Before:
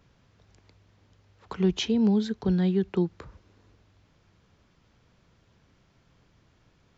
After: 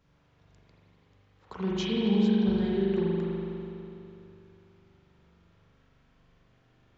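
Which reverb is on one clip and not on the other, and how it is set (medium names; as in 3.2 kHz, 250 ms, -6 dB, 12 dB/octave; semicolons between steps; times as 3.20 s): spring tank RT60 3 s, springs 41 ms, chirp 45 ms, DRR -6.5 dB; trim -7.5 dB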